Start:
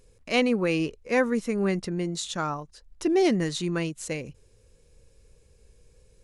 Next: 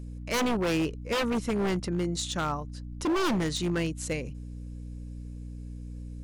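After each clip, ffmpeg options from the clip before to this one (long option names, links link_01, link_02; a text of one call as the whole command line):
ffmpeg -i in.wav -af "aeval=exprs='val(0)+0.0126*(sin(2*PI*60*n/s)+sin(2*PI*2*60*n/s)/2+sin(2*PI*3*60*n/s)/3+sin(2*PI*4*60*n/s)/4+sin(2*PI*5*60*n/s)/5)':channel_layout=same,aeval=exprs='0.0841*(abs(mod(val(0)/0.0841+3,4)-2)-1)':channel_layout=same" out.wav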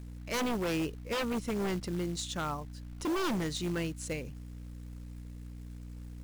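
ffmpeg -i in.wav -af "acrusher=bits=5:mode=log:mix=0:aa=0.000001,volume=-5dB" out.wav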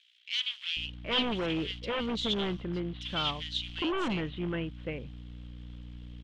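ffmpeg -i in.wav -filter_complex "[0:a]lowpass=frequency=3200:width_type=q:width=7.1,acrossover=split=2200[link_01][link_02];[link_01]adelay=770[link_03];[link_03][link_02]amix=inputs=2:normalize=0" out.wav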